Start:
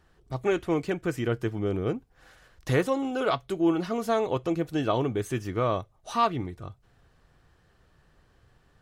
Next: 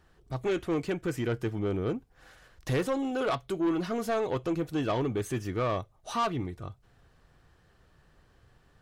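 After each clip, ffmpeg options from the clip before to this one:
-af "asoftclip=type=tanh:threshold=-22.5dB"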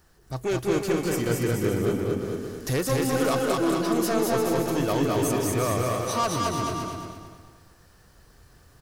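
-filter_complex "[0:a]asplit=2[a][b];[b]aecho=0:1:225|450|675|900|1125:0.708|0.248|0.0867|0.0304|0.0106[c];[a][c]amix=inputs=2:normalize=0,aexciter=amount=4:drive=2.2:freq=4.6k,asplit=2[d][e];[e]aecho=0:1:200|350|462.5|546.9|610.2:0.631|0.398|0.251|0.158|0.1[f];[d][f]amix=inputs=2:normalize=0,volume=2dB"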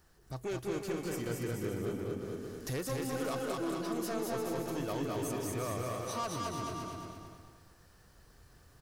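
-af "acompressor=threshold=-38dB:ratio=1.5,volume=-5.5dB"

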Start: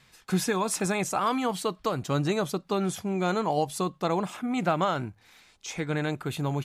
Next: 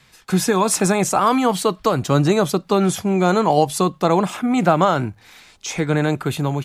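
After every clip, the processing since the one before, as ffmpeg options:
-filter_complex "[0:a]acrossover=split=310|1600|4400[a][b][c][d];[c]alimiter=level_in=12.5dB:limit=-24dB:level=0:latency=1:release=27,volume=-12.5dB[e];[a][b][e][d]amix=inputs=4:normalize=0,dynaudnorm=f=120:g=7:m=4.5dB,volume=6dB"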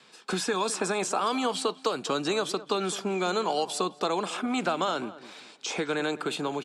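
-filter_complex "[0:a]highpass=f=210:w=0.5412,highpass=f=210:w=1.3066,equalizer=f=430:t=q:w=4:g=5,equalizer=f=2k:t=q:w=4:g=-8,equalizer=f=6.4k:t=q:w=4:g=-6,lowpass=f=8.5k:w=0.5412,lowpass=f=8.5k:w=1.3066,acrossover=split=1100|2300[a][b][c];[a]acompressor=threshold=-30dB:ratio=4[d];[b]acompressor=threshold=-34dB:ratio=4[e];[c]acompressor=threshold=-32dB:ratio=4[f];[d][e][f]amix=inputs=3:normalize=0,asplit=2[g][h];[h]adelay=209,lowpass=f=1.8k:p=1,volume=-15.5dB,asplit=2[i][j];[j]adelay=209,lowpass=f=1.8k:p=1,volume=0.32,asplit=2[k][l];[l]adelay=209,lowpass=f=1.8k:p=1,volume=0.32[m];[g][i][k][m]amix=inputs=4:normalize=0"

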